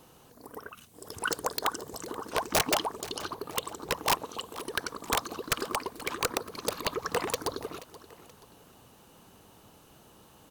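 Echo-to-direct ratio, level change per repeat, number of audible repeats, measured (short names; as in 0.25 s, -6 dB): -17.0 dB, -7.0 dB, 2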